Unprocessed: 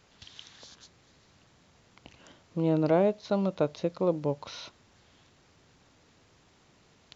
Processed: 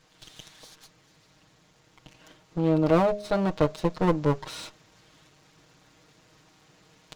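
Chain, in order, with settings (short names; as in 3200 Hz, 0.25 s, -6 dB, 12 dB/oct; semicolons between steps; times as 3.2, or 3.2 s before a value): minimum comb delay 6.4 ms; de-hum 206.9 Hz, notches 3; vocal rider 2 s; gain +4.5 dB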